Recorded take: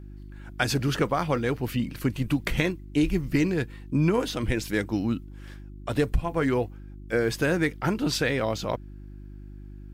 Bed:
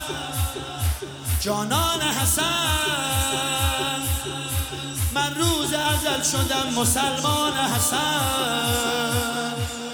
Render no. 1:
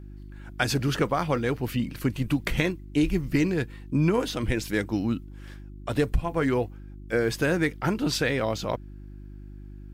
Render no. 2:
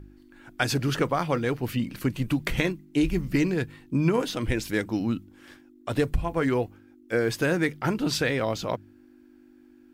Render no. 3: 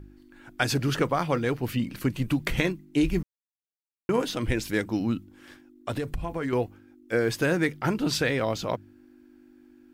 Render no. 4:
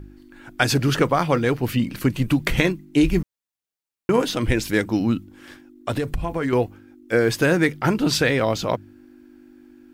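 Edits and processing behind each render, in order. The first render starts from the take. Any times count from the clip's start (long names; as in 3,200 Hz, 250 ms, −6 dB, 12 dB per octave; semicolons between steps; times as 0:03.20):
no processing that can be heard
hum removal 50 Hz, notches 4
0:03.23–0:04.09: silence; 0:05.90–0:06.53: downward compressor 5 to 1, threshold −26 dBFS
level +6 dB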